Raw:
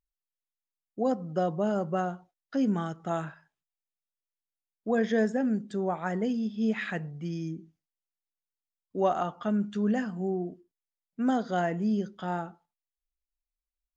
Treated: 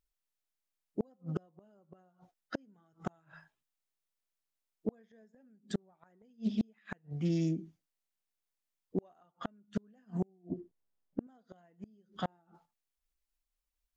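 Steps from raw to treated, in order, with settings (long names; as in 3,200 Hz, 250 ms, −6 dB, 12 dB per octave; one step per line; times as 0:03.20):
spectral magnitudes quantised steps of 15 dB
0:10.50–0:11.27: tilt shelving filter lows +9.5 dB, about 1,200 Hz
gate with flip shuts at −24 dBFS, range −39 dB
highs frequency-modulated by the lows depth 0.22 ms
level +3.5 dB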